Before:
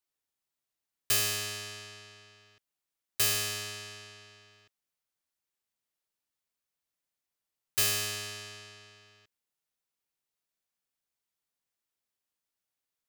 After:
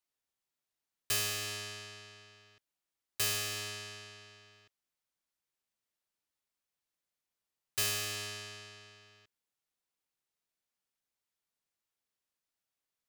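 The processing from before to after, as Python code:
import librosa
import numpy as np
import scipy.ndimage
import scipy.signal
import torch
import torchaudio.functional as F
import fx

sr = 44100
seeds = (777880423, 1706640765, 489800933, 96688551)

p1 = fx.high_shelf(x, sr, hz=9700.0, db=-4.0)
p2 = (np.mod(10.0 ** (31.5 / 20.0) * p1 + 1.0, 2.0) - 1.0) / 10.0 ** (31.5 / 20.0)
p3 = p1 + (p2 * 10.0 ** (-9.0 / 20.0))
y = p3 * 10.0 ** (-3.5 / 20.0)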